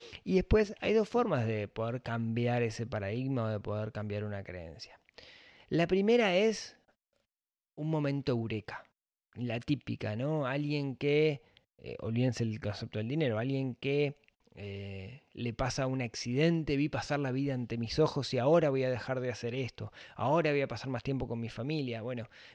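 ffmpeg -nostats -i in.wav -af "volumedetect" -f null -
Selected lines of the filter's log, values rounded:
mean_volume: -32.9 dB
max_volume: -15.1 dB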